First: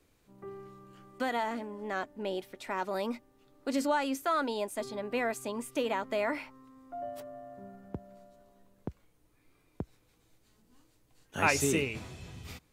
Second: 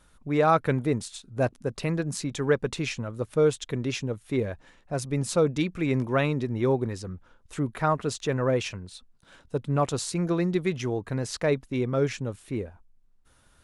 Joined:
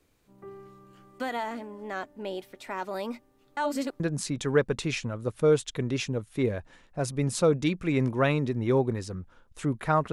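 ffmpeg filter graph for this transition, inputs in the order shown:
ffmpeg -i cue0.wav -i cue1.wav -filter_complex "[0:a]apad=whole_dur=10.12,atrim=end=10.12,asplit=2[link_01][link_02];[link_01]atrim=end=3.572[link_03];[link_02]atrim=start=3.568:end=4.002,asetpts=PTS-STARTPTS,areverse[link_04];[1:a]atrim=start=1.938:end=8.06[link_05];[link_03][link_04]acrossfade=duration=0.004:curve1=hsin:curve2=hsin[link_06];[link_06][link_05]acrossfade=duration=0.004:curve1=hsin:curve2=hsin" out.wav

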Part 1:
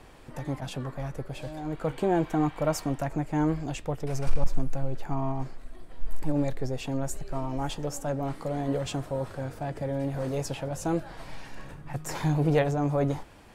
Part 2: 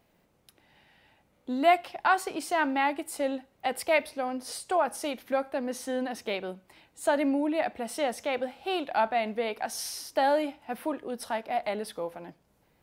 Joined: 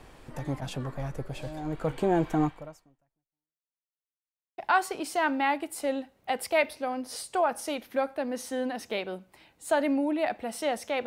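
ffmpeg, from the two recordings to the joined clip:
ffmpeg -i cue0.wav -i cue1.wav -filter_complex "[0:a]apad=whole_dur=11.06,atrim=end=11.06,asplit=2[link_01][link_02];[link_01]atrim=end=3.77,asetpts=PTS-STARTPTS,afade=type=out:start_time=2.44:duration=1.33:curve=exp[link_03];[link_02]atrim=start=3.77:end=4.58,asetpts=PTS-STARTPTS,volume=0[link_04];[1:a]atrim=start=1.94:end=8.42,asetpts=PTS-STARTPTS,afade=type=in:duration=0.004:curve=hsin[link_05];[link_03][link_04][link_05]concat=n=3:v=0:a=1" out.wav

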